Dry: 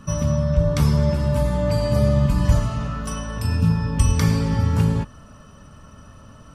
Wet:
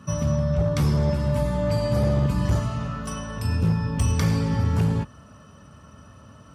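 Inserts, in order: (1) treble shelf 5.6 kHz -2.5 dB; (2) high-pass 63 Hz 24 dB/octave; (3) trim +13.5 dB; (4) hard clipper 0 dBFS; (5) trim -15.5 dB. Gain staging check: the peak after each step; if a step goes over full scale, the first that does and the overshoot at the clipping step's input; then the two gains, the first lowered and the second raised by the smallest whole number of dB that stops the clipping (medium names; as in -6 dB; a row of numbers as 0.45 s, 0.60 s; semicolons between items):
-5.0 dBFS, -6.0 dBFS, +7.5 dBFS, 0.0 dBFS, -15.5 dBFS; step 3, 7.5 dB; step 3 +5.5 dB, step 5 -7.5 dB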